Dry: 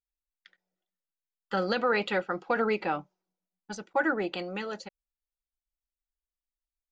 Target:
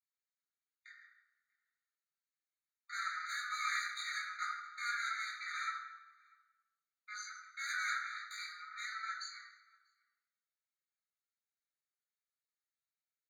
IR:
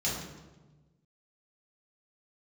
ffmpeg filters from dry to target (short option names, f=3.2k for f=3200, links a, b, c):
-filter_complex "[0:a]aemphasis=mode=reproduction:type=bsi,atempo=0.52,aeval=exprs='(tanh(56.2*val(0)+0.4)-tanh(0.4))/56.2':c=same,asplit=2[a][b];[b]adelay=641.4,volume=-26dB,highshelf=f=4k:g=-14.4[c];[a][c]amix=inputs=2:normalize=0[d];[1:a]atrim=start_sample=2205[e];[d][e]afir=irnorm=-1:irlink=0,afftfilt=real='re*eq(mod(floor(b*sr/1024/1200),2),1)':imag='im*eq(mod(floor(b*sr/1024/1200),2),1)':win_size=1024:overlap=0.75"